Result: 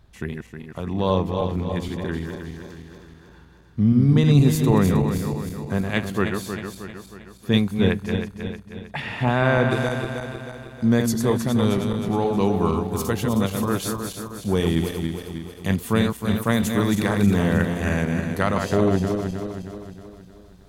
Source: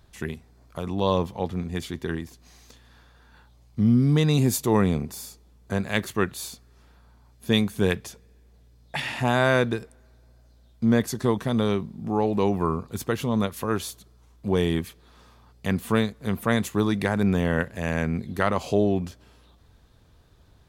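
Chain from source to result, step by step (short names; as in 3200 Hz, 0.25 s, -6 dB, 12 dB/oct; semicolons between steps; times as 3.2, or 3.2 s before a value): regenerating reverse delay 0.157 s, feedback 71%, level -5.5 dB; tone controls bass +3 dB, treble -5 dB, from 7.73 s treble -12 dB, from 9.7 s treble +4 dB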